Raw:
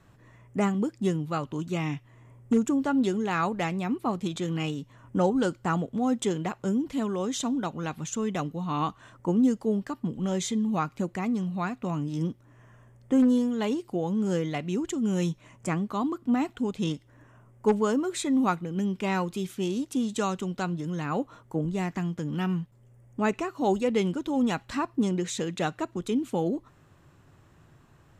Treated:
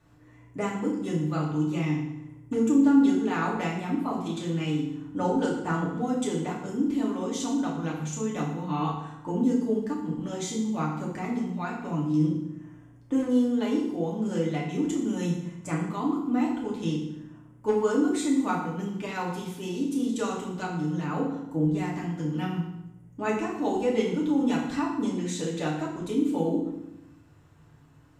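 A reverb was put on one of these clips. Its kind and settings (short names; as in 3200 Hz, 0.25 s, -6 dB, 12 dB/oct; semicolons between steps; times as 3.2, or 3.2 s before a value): FDN reverb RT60 0.86 s, low-frequency decay 1.35×, high-frequency decay 0.85×, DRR -4.5 dB; gain -7 dB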